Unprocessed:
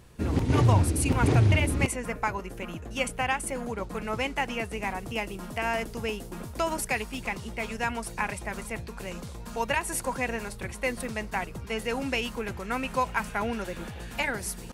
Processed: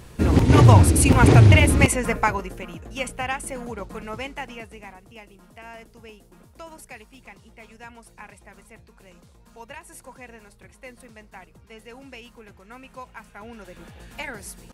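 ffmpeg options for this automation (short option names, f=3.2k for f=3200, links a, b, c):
-af "volume=17.5dB,afade=t=out:st=2.15:d=0.51:silence=0.354813,afade=t=out:st=3.74:d=1.27:silence=0.223872,afade=t=in:st=13.34:d=0.69:silence=0.375837"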